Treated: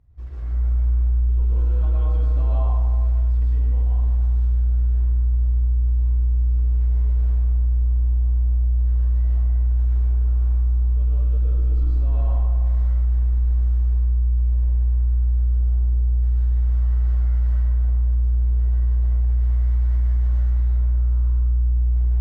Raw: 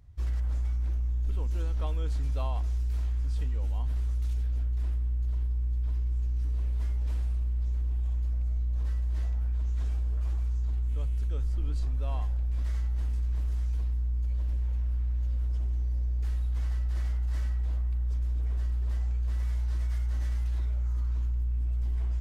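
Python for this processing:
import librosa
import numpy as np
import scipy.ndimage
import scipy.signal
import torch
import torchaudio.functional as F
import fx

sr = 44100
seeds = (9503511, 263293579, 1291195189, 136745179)

y = fx.lowpass(x, sr, hz=1300.0, slope=6)
y = fx.rev_plate(y, sr, seeds[0], rt60_s=2.1, hf_ratio=0.4, predelay_ms=100, drr_db=-7.0)
y = y * 10.0 ** (-3.0 / 20.0)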